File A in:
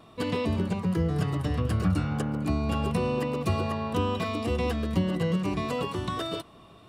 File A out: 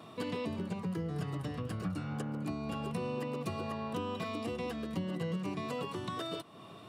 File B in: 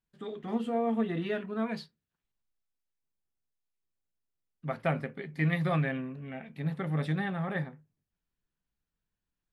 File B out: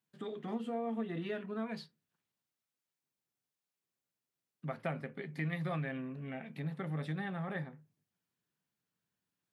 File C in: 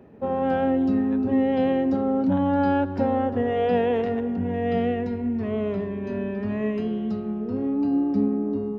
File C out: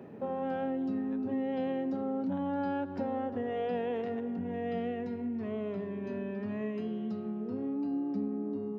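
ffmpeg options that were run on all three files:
-af "acompressor=threshold=-44dB:ratio=2,highpass=f=110:w=0.5412,highpass=f=110:w=1.3066,volume=2dB"

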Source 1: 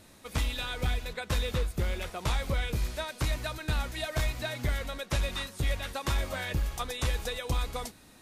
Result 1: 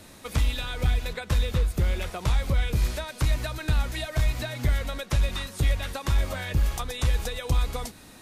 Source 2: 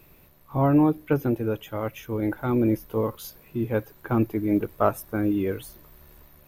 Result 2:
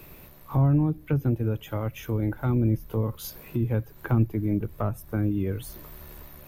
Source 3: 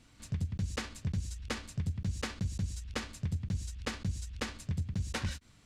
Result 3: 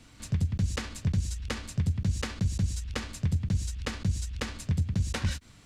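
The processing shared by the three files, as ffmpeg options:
-filter_complex "[0:a]acrossover=split=170[a][b];[b]acompressor=threshold=-38dB:ratio=6[c];[a][c]amix=inputs=2:normalize=0,volume=7dB"

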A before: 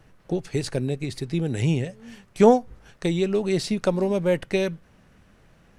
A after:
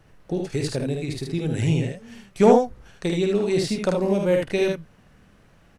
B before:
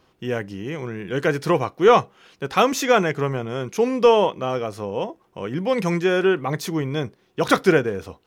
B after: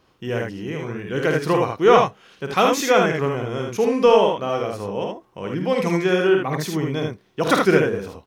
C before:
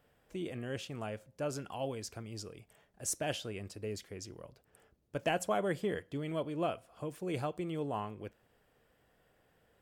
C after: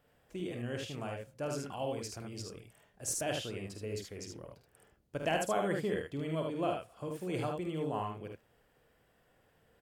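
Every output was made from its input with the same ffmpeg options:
-af "aecho=1:1:50|76:0.473|0.631,volume=-1dB"

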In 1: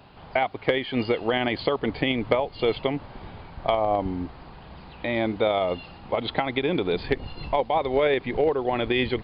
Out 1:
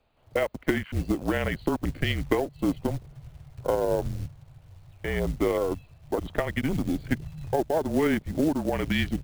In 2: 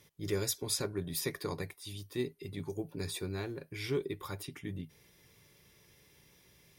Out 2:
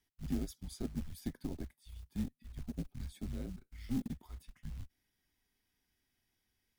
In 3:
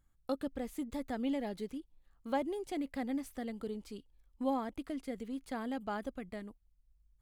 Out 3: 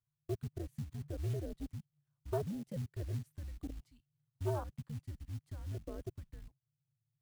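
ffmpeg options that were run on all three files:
-af "afwtdn=0.0282,acrusher=bits=5:mode=log:mix=0:aa=0.000001,afreqshift=-160,volume=-2dB"

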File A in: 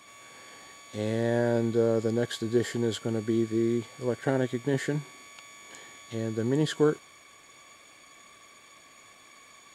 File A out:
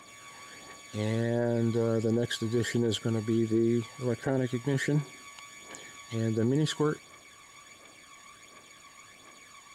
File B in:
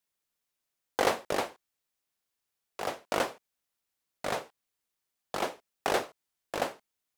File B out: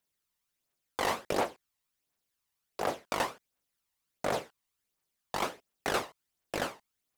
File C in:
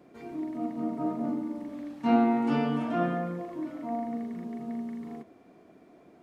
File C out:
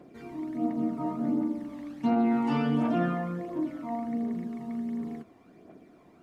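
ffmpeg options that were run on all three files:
-af "aphaser=in_gain=1:out_gain=1:delay=1.1:decay=0.46:speed=1.4:type=triangular,alimiter=limit=-18dB:level=0:latency=1:release=25"

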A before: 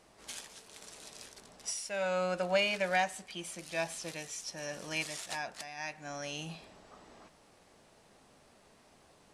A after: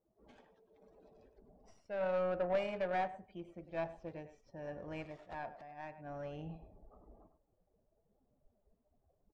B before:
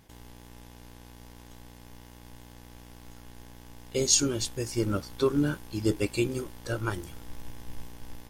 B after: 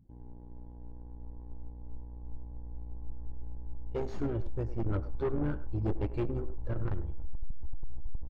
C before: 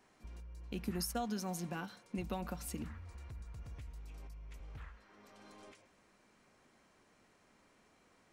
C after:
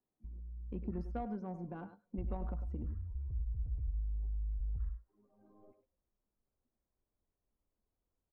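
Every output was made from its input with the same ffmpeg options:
-filter_complex "[0:a]afftdn=nr=20:nf=-51,asubboost=boost=7.5:cutoff=68,aeval=exprs='(tanh(22.4*val(0)+0.15)-tanh(0.15))/22.4':c=same,asplit=2[a][b];[b]adelay=100,highpass=300,lowpass=3.4k,asoftclip=type=hard:threshold=-34dB,volume=-9dB[c];[a][c]amix=inputs=2:normalize=0,adynamicsmooth=sensitivity=1:basefreq=740,volume=1.5dB"

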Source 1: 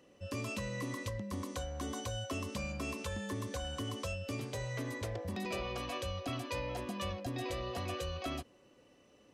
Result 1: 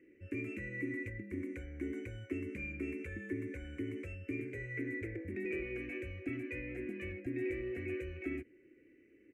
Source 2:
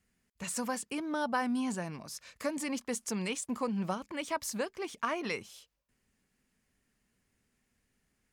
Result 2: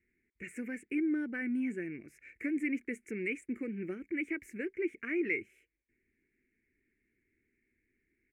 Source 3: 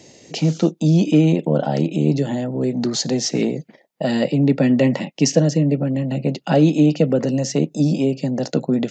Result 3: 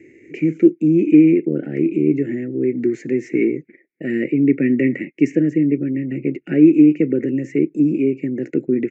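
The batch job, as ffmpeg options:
-af "firequalizer=gain_entry='entry(100,0);entry(180,-5);entry(340,14);entry(600,-15);entry(1000,-29);entry(1500,-1);entry(2200,13);entry(3300,-24);entry(4600,-29);entry(7300,-15)':delay=0.05:min_phase=1,volume=-4.5dB"

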